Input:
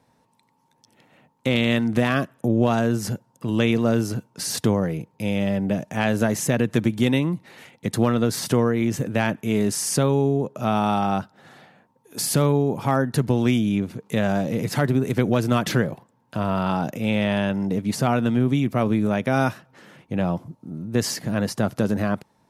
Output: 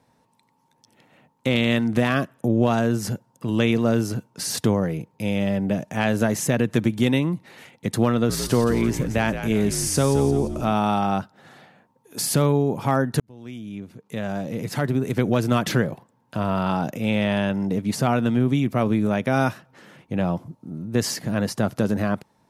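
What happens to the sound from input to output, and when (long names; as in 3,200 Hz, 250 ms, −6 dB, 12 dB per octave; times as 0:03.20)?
0:08.12–0:10.73: echo with shifted repeats 172 ms, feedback 44%, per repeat −59 Hz, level −9.5 dB
0:13.20–0:15.41: fade in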